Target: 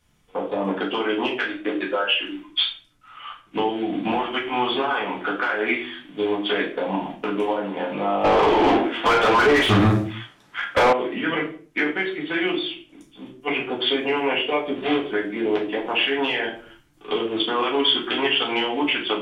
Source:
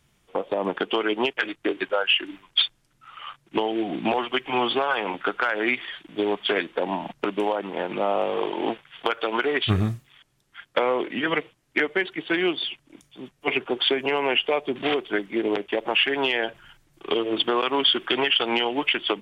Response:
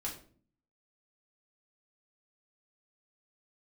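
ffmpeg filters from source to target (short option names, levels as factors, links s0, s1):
-filter_complex "[1:a]atrim=start_sample=2205,afade=t=out:st=0.37:d=0.01,atrim=end_sample=16758[s0];[0:a][s0]afir=irnorm=-1:irlink=0,asettb=1/sr,asplit=3[s1][s2][s3];[s1]atrim=end=8.244[s4];[s2]atrim=start=8.24:end=10.93,asetpts=PTS-STARTPTS,afade=t=in:d=0.004:c=qsin,afade=t=out:st=2.686:d=0.004:c=qsin,asplit=2[s5][s6];[s6]highpass=f=720:p=1,volume=25.1,asoftclip=type=tanh:threshold=0.422[s7];[s5][s7]amix=inputs=2:normalize=0,lowpass=f=1400:p=1,volume=0.501[s8];[s3]atrim=start=10.926[s9];[s4][s8]acrossfade=d=0.004:c1=hsin:c2=qsin[s10];[s10][s9]acrossfade=d=0.004:c1=qsin:c2=hsin"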